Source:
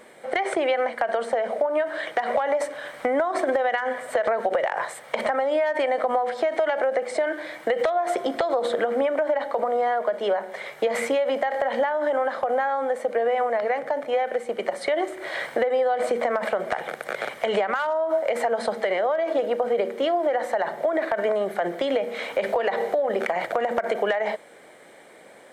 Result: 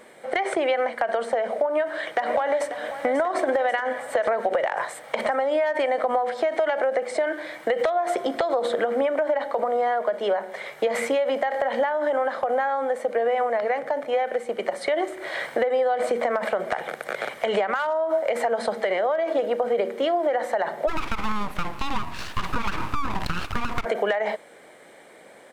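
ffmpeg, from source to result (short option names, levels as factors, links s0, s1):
-filter_complex "[0:a]asplit=2[s0][s1];[s1]afade=t=in:st=1.67:d=0.01,afade=t=out:st=2.72:d=0.01,aecho=0:1:540|1080|1620|2160|2700|3240|3780|4320:0.281838|0.183195|0.119077|0.0773998|0.0503099|0.0327014|0.0212559|0.0138164[s2];[s0][s2]amix=inputs=2:normalize=0,asplit=3[s3][s4][s5];[s3]afade=t=out:st=20.87:d=0.02[s6];[s4]aeval=exprs='abs(val(0))':c=same,afade=t=in:st=20.87:d=0.02,afade=t=out:st=23.84:d=0.02[s7];[s5]afade=t=in:st=23.84:d=0.02[s8];[s6][s7][s8]amix=inputs=3:normalize=0"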